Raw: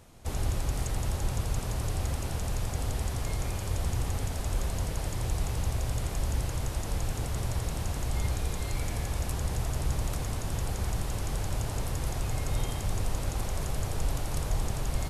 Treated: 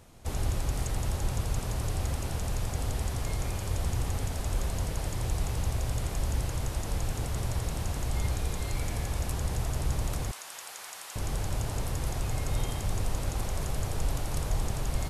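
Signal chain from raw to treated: 10.31–11.16 s: high-pass 1.1 kHz 12 dB/octave

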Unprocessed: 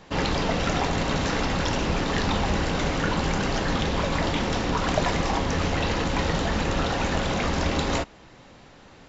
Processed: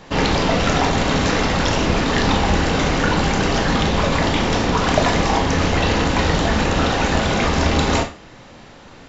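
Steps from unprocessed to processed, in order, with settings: Schroeder reverb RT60 0.33 s, combs from 26 ms, DRR 6.5 dB; trim +6.5 dB

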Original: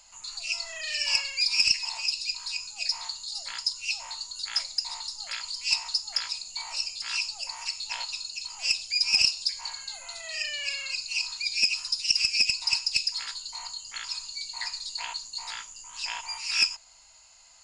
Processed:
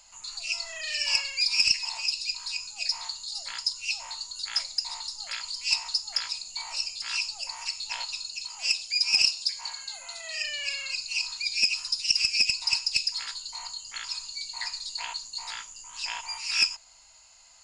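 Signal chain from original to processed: 8.45–10.43 s: bass shelf 130 Hz -8.5 dB

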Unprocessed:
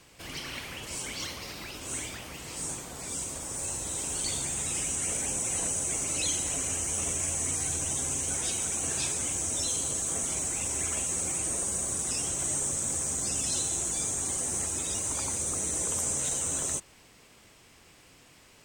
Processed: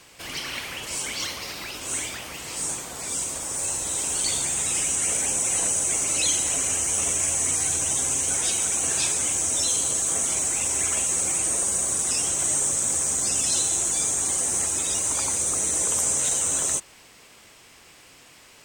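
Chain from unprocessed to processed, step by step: bass shelf 360 Hz -8 dB; trim +7 dB

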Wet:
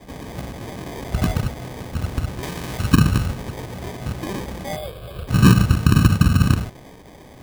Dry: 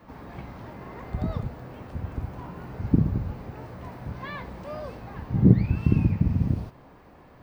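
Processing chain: sample-and-hold 32×; 4.76–5.28 s: static phaser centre 1.3 kHz, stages 8; loudness maximiser +9.5 dB; 2.43–3.26 s: tape noise reduction on one side only encoder only; trim -1.5 dB

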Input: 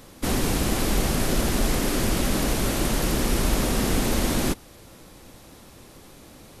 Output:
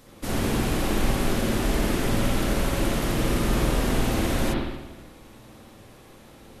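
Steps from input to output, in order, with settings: spring tank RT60 1.1 s, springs 50/59 ms, chirp 35 ms, DRR -4.5 dB; trim -6 dB

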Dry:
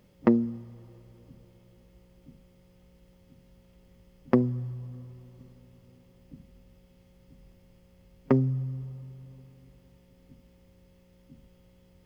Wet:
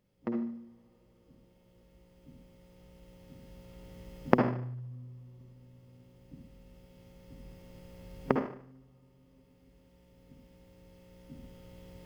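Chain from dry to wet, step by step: recorder AGC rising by 5.9 dB/s; on a send: reverberation RT60 0.55 s, pre-delay 50 ms, DRR 3 dB; on the sum: trim -14.5 dB

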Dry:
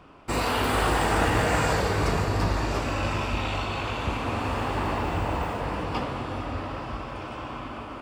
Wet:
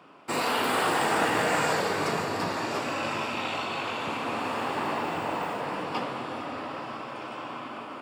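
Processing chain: high-pass 140 Hz 24 dB/octave; bass shelf 250 Hz -6.5 dB; band-stop 6.1 kHz, Q 17

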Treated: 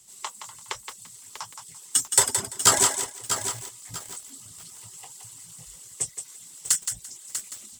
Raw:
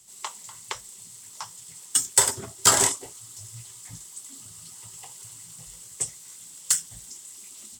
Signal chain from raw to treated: reverb removal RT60 0.6 s; thinning echo 170 ms, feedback 21%, high-pass 440 Hz, level -7.5 dB; bit-crushed delay 643 ms, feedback 35%, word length 6-bit, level -8.5 dB

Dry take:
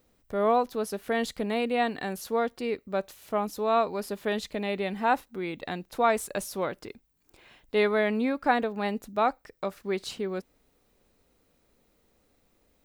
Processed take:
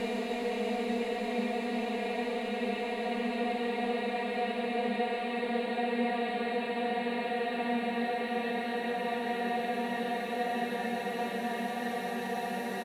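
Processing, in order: vibrato 14 Hz 13 cents; echo from a far wall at 36 m, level -11 dB; Paulstretch 26×, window 1.00 s, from 1.52 s; trim -5 dB

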